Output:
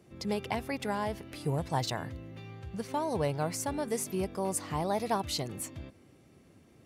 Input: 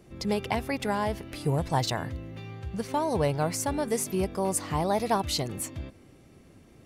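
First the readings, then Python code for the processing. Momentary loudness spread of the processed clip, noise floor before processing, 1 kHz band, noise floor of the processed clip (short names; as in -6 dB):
11 LU, -55 dBFS, -4.5 dB, -60 dBFS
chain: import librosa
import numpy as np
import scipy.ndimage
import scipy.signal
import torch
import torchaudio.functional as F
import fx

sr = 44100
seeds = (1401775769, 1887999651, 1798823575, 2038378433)

y = scipy.signal.sosfilt(scipy.signal.butter(2, 72.0, 'highpass', fs=sr, output='sos'), x)
y = y * librosa.db_to_amplitude(-4.5)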